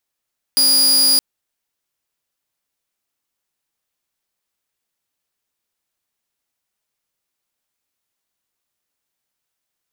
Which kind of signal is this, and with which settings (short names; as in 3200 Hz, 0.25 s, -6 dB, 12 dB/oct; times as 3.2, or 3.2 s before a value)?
tone saw 4870 Hz -8.5 dBFS 0.62 s